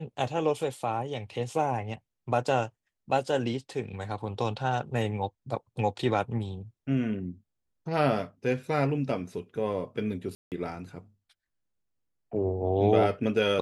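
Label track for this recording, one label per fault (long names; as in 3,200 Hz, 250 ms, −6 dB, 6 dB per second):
10.350000	10.520000	drop-out 168 ms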